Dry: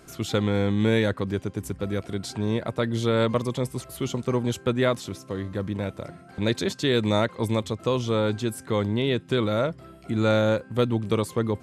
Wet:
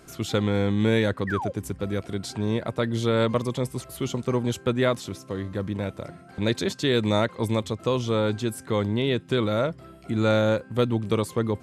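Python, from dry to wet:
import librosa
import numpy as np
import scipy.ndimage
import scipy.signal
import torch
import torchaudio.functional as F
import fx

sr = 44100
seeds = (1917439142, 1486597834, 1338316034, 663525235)

y = fx.spec_paint(x, sr, seeds[0], shape='fall', start_s=1.27, length_s=0.25, low_hz=490.0, high_hz=2000.0, level_db=-31.0)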